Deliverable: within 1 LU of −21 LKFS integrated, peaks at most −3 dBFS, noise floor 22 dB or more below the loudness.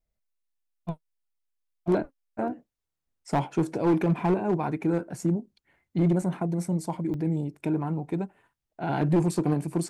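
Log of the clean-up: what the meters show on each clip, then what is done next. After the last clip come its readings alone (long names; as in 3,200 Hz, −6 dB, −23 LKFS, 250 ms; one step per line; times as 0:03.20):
share of clipped samples 0.8%; peaks flattened at −17.0 dBFS; number of dropouts 2; longest dropout 2.0 ms; integrated loudness −28.0 LKFS; sample peak −17.0 dBFS; target loudness −21.0 LKFS
→ clipped peaks rebuilt −17 dBFS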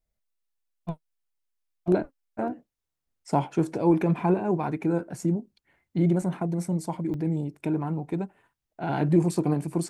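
share of clipped samples 0.0%; number of dropouts 2; longest dropout 2.0 ms
→ repair the gap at 0:06.22/0:07.14, 2 ms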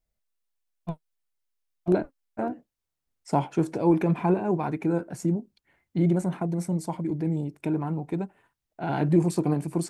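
number of dropouts 0; integrated loudness −27.0 LKFS; sample peak −9.5 dBFS; target loudness −21.0 LKFS
→ level +6 dB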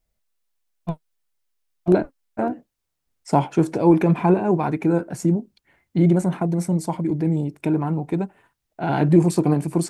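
integrated loudness −21.0 LKFS; sample peak −3.5 dBFS; background noise floor −78 dBFS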